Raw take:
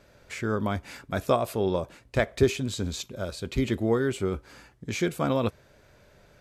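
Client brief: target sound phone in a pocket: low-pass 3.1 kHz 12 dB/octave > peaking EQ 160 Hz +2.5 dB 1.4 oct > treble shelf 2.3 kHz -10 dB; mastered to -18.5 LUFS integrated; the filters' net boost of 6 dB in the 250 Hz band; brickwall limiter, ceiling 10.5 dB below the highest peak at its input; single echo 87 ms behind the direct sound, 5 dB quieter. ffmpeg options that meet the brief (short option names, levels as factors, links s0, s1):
-af "equalizer=f=250:t=o:g=6,alimiter=limit=0.141:level=0:latency=1,lowpass=3100,equalizer=f=160:t=o:w=1.4:g=2.5,highshelf=f=2300:g=-10,aecho=1:1:87:0.562,volume=2.99"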